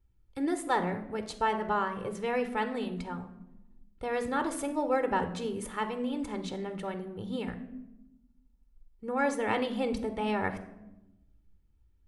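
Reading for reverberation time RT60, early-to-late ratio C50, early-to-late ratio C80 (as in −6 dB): 0.95 s, 11.5 dB, 15.0 dB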